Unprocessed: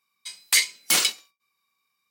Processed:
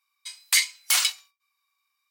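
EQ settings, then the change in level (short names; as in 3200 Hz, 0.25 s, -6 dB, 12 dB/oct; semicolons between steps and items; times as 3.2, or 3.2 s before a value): HPF 790 Hz 24 dB/oct; -1.0 dB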